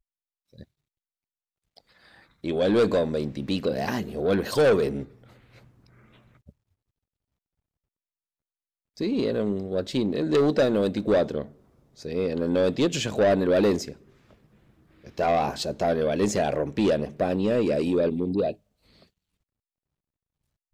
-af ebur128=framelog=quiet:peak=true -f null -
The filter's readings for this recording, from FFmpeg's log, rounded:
Integrated loudness:
  I:         -24.7 LUFS
  Threshold: -36.3 LUFS
Loudness range:
  LRA:         5.6 LU
  Threshold: -46.8 LUFS
  LRA low:   -30.4 LUFS
  LRA high:  -24.8 LUFS
True peak:
  Peak:      -15.1 dBFS